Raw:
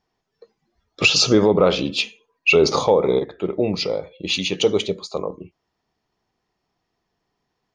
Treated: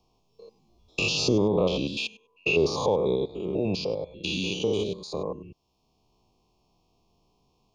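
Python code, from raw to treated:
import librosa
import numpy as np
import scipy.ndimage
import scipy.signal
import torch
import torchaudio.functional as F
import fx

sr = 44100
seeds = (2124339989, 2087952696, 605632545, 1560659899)

y = fx.spec_steps(x, sr, hold_ms=100)
y = scipy.signal.sosfilt(scipy.signal.cheby1(3, 1.0, [1100.0, 2500.0], 'bandstop', fs=sr, output='sos'), y)
y = fx.low_shelf(y, sr, hz=87.0, db=9.0)
y = fx.band_squash(y, sr, depth_pct=40)
y = y * 10.0 ** (-4.5 / 20.0)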